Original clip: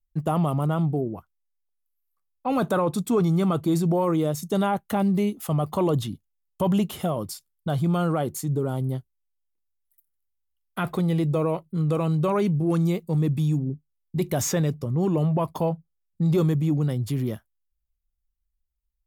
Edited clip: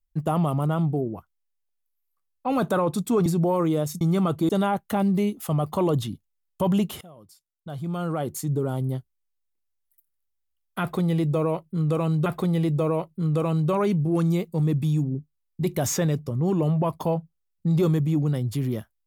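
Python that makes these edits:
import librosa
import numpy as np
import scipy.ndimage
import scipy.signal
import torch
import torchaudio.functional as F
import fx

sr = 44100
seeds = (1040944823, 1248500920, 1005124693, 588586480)

y = fx.edit(x, sr, fx.move(start_s=3.26, length_s=0.48, to_s=4.49),
    fx.fade_in_from(start_s=7.01, length_s=1.39, curve='qua', floor_db=-21.5),
    fx.repeat(start_s=10.81, length_s=1.45, count=2), tone=tone)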